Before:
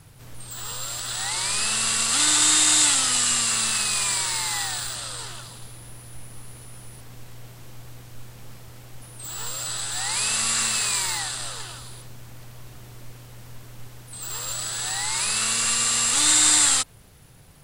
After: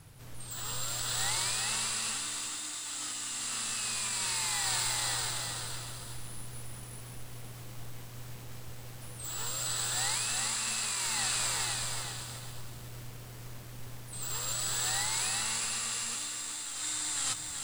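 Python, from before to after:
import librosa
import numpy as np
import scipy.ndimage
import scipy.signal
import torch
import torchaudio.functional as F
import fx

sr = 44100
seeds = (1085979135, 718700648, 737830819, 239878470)

y = x + 10.0 ** (-6.0 / 20.0) * np.pad(x, (int(510 * sr / 1000.0), 0))[:len(x)]
y = fx.over_compress(y, sr, threshold_db=-27.0, ratio=-1.0)
y = fx.echo_crushed(y, sr, ms=376, feedback_pct=35, bits=7, wet_db=-4)
y = y * librosa.db_to_amplitude(-8.0)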